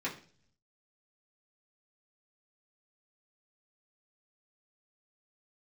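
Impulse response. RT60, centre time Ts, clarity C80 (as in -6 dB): 0.45 s, 18 ms, 15.5 dB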